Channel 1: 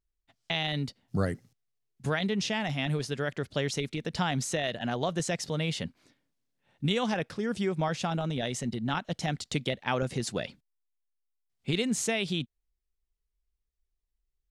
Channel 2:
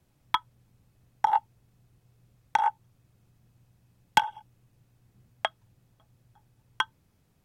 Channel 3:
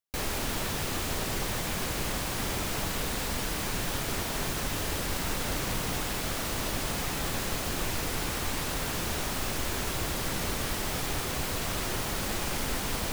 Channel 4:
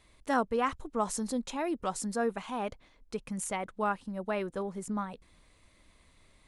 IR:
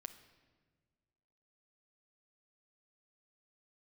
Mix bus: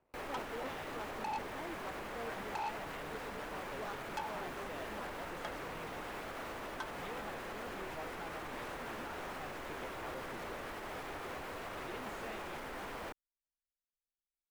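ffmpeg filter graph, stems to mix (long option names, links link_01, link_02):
-filter_complex "[0:a]adelay=150,volume=-15dB[link_01];[1:a]volume=-7dB[link_02];[2:a]alimiter=limit=-24dB:level=0:latency=1:release=91,volume=-3dB[link_03];[3:a]acrusher=samples=22:mix=1:aa=0.000001:lfo=1:lforange=13.2:lforate=3.5,volume=-10dB[link_04];[link_01][link_02][link_03][link_04]amix=inputs=4:normalize=0,acrossover=split=300 2400:gain=0.224 1 0.141[link_05][link_06][link_07];[link_05][link_06][link_07]amix=inputs=3:normalize=0,asoftclip=type=tanh:threshold=-34.5dB"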